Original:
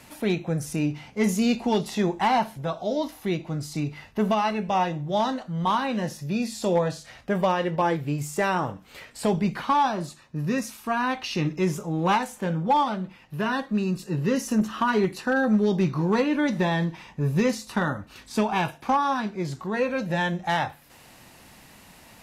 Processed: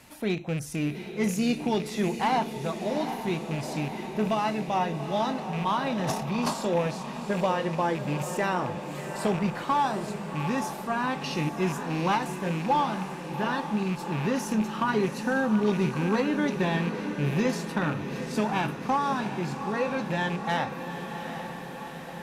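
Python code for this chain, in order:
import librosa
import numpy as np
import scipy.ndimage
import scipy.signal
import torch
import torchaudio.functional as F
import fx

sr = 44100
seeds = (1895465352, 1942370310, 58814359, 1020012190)

y = fx.rattle_buzz(x, sr, strikes_db=-27.0, level_db=-26.0)
y = fx.echo_diffused(y, sr, ms=781, feedback_pct=67, wet_db=-8.5)
y = fx.transient(y, sr, attack_db=-1, sustain_db=12, at=(5.85, 6.52), fade=0.02)
y = F.gain(torch.from_numpy(y), -3.5).numpy()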